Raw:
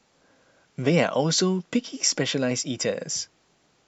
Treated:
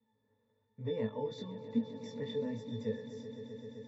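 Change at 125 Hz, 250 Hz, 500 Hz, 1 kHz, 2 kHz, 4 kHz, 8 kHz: -14.5 dB, -11.5 dB, -12.0 dB, -17.5 dB, -23.5 dB, -23.5 dB, n/a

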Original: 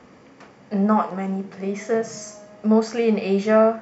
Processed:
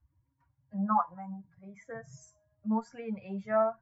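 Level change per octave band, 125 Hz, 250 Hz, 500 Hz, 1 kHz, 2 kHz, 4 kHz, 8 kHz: -13.0 dB, -14.0 dB, -14.5 dB, -6.5 dB, -14.0 dB, under -25 dB, n/a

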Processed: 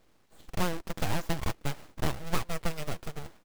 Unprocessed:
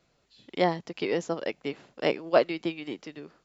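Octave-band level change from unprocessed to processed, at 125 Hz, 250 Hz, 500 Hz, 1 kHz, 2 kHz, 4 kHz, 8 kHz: +6.0 dB, -4.5 dB, -12.0 dB, -4.0 dB, -3.5 dB, -2.0 dB, n/a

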